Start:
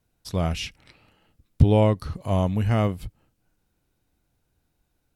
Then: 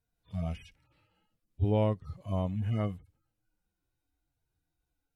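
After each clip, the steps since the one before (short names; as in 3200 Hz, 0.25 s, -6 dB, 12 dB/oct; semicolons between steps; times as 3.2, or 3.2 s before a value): median-filter separation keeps harmonic; gain -8.5 dB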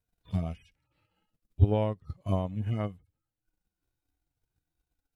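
transient shaper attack +11 dB, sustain -6 dB; gain -2 dB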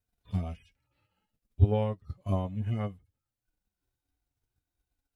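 notch comb 160 Hz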